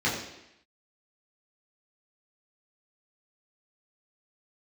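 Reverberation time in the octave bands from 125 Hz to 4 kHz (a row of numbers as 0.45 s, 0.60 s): 0.70 s, 0.85 s, 0.80 s, 0.85 s, 0.95 s, 0.85 s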